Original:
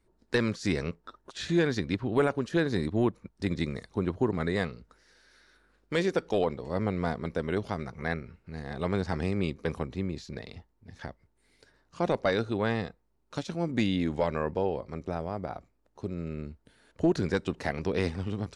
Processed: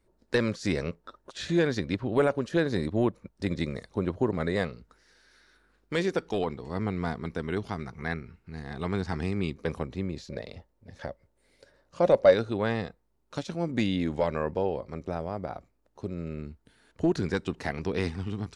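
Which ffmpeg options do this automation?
ffmpeg -i in.wav -af "asetnsamples=nb_out_samples=441:pad=0,asendcmd='4.73 equalizer g -2;6.24 equalizer g -9.5;9.57 equalizer g 2;10.19 equalizer g 13;12.34 equalizer g 2;16.39 equalizer g -5;18.04 equalizer g -12.5',equalizer=frequency=560:width_type=o:width=0.34:gain=6" out.wav

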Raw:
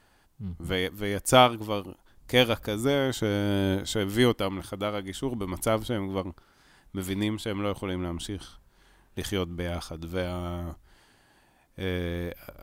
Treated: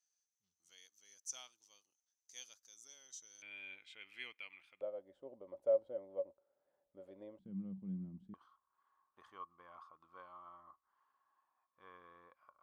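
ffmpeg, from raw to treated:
ffmpeg -i in.wav -af "asetnsamples=nb_out_samples=441:pad=0,asendcmd='3.42 bandpass f 2400;4.81 bandpass f 560;7.39 bandpass f 190;8.34 bandpass f 1100',bandpass=frequency=6100:width_type=q:width=19:csg=0" out.wav

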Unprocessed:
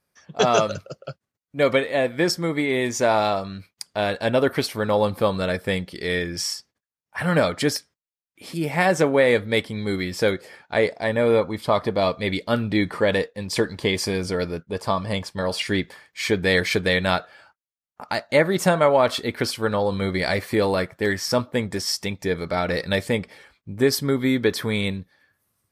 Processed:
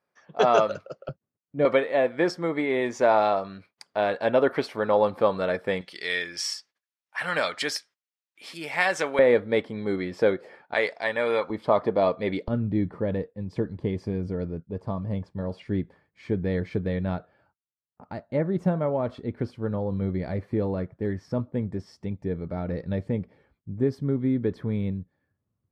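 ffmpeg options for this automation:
ffmpeg -i in.wav -af "asetnsamples=nb_out_samples=441:pad=0,asendcmd='1.09 bandpass f 230;1.65 bandpass f 710;5.81 bandpass f 2500;9.19 bandpass f 520;10.74 bandpass f 1800;11.5 bandpass f 480;12.48 bandpass f 110',bandpass=frequency=760:width_type=q:width=0.54:csg=0" out.wav

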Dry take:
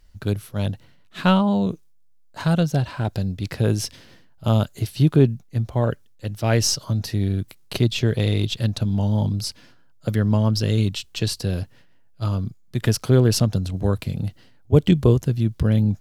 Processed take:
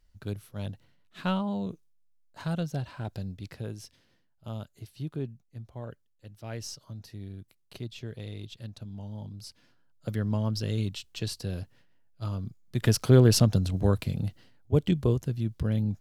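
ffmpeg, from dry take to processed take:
ffmpeg -i in.wav -af "volume=5.5dB,afade=type=out:start_time=3.31:duration=0.43:silence=0.421697,afade=type=in:start_time=9.33:duration=0.75:silence=0.334965,afade=type=in:start_time=12.42:duration=0.64:silence=0.421697,afade=type=out:start_time=13.72:duration=1.12:silence=0.446684" out.wav

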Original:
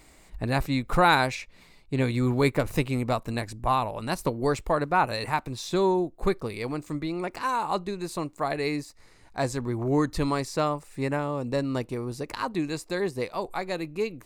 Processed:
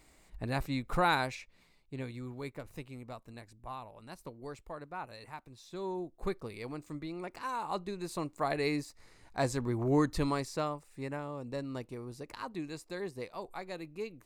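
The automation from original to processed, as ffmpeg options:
ffmpeg -i in.wav -af "volume=7.5dB,afade=type=out:start_time=1.06:duration=1.24:silence=0.281838,afade=type=in:start_time=5.7:duration=0.5:silence=0.354813,afade=type=in:start_time=7.49:duration=1.1:silence=0.473151,afade=type=out:start_time=10.04:duration=0.8:silence=0.421697" out.wav

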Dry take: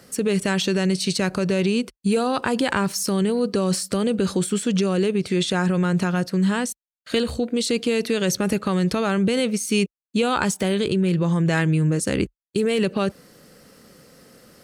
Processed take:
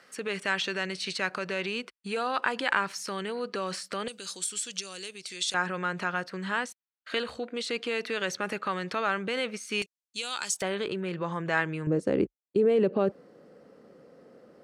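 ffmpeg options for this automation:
ffmpeg -i in.wav -af "asetnsamples=nb_out_samples=441:pad=0,asendcmd='4.08 bandpass f 6300;5.54 bandpass f 1500;9.82 bandpass f 5800;10.62 bandpass f 1200;11.87 bandpass f 480',bandpass=frequency=1700:width_type=q:width=0.95:csg=0" out.wav

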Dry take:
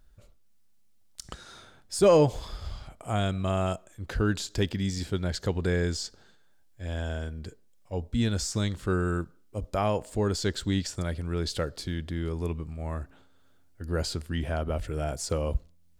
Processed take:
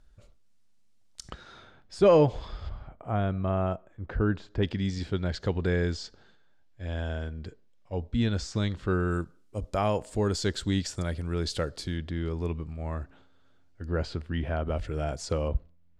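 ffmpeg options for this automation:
ffmpeg -i in.wav -af "asetnsamples=nb_out_samples=441:pad=0,asendcmd='1.3 lowpass f 3500;2.69 lowpass f 1600;4.63 lowpass f 4200;9.11 lowpass f 10000;11.97 lowpass f 5200;13.88 lowpass f 3000;14.67 lowpass f 5600;15.48 lowpass f 2300',lowpass=8200" out.wav

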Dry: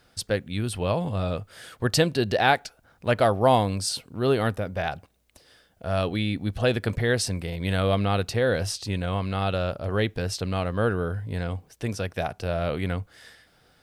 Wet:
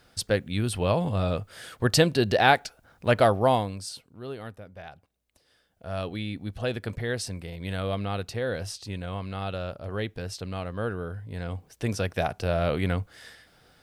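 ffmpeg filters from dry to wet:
ffmpeg -i in.wav -af "volume=17.5dB,afade=type=out:start_time=3.23:duration=0.49:silence=0.354813,afade=type=out:start_time=3.72:duration=0.55:silence=0.446684,afade=type=in:start_time=4.94:duration=1.07:silence=0.375837,afade=type=in:start_time=11.32:duration=0.62:silence=0.398107" out.wav

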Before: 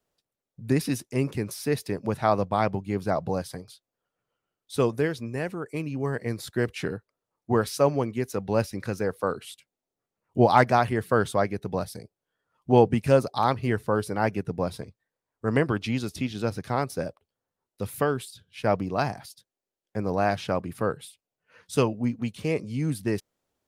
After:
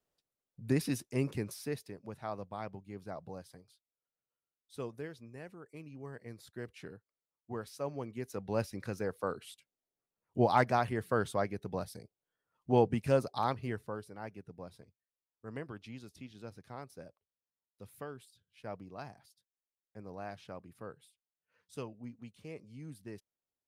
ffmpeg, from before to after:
ffmpeg -i in.wav -af "volume=2.5dB,afade=type=out:start_time=1.35:duration=0.58:silence=0.281838,afade=type=in:start_time=7.79:duration=0.83:silence=0.354813,afade=type=out:start_time=13.41:duration=0.65:silence=0.281838" out.wav

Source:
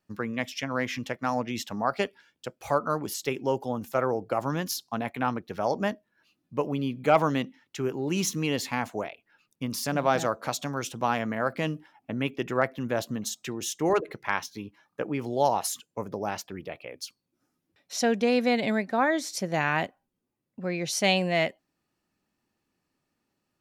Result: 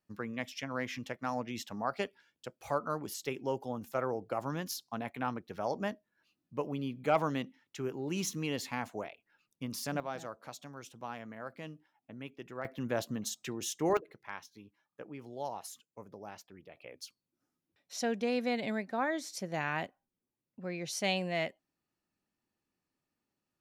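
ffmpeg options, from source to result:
ffmpeg -i in.wav -af "asetnsamples=nb_out_samples=441:pad=0,asendcmd='10 volume volume -16dB;12.65 volume volume -5dB;13.97 volume volume -15.5dB;16.77 volume volume -8.5dB',volume=-7.5dB" out.wav

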